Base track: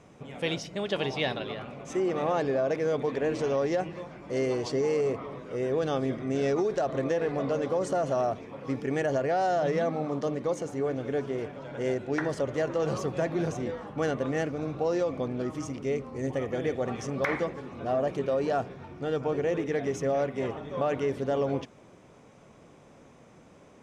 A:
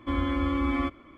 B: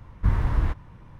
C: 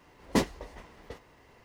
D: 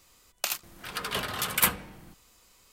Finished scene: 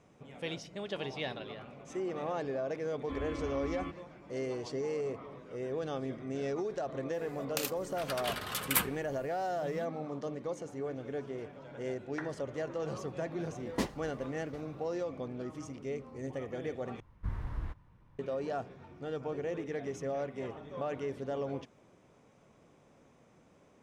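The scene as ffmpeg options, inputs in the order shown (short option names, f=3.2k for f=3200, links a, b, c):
-filter_complex "[0:a]volume=-8.5dB,asplit=2[a][b];[a]atrim=end=17.004[c];[2:a]atrim=end=1.19,asetpts=PTS-STARTPTS,volume=-15dB[d];[b]atrim=start=18.186[e];[1:a]atrim=end=1.17,asetpts=PTS-STARTPTS,volume=-13dB,afade=t=in:d=0.004:c=hsin,afade=t=out:st=1.166:d=0.004:c=hsin,adelay=3020[f];[4:a]atrim=end=2.72,asetpts=PTS-STARTPTS,volume=-6dB,afade=t=in:d=0.004:c=hsin,afade=t=out:st=2.716:d=0.004:c=hsin,adelay=7130[g];[3:a]atrim=end=1.64,asetpts=PTS-STARTPTS,volume=-7.5dB,afade=t=in:d=0.004:c=hsin,afade=t=out:st=1.636:d=0.004:c=hsin,adelay=13430[h];[c][d]acrossfade=d=0.004:c1=hsin:c2=hsin[i];[i][e]acrossfade=d=0.004:c1=hsin:c2=hsin[j];[j][f][g][h]amix=inputs=4:normalize=0"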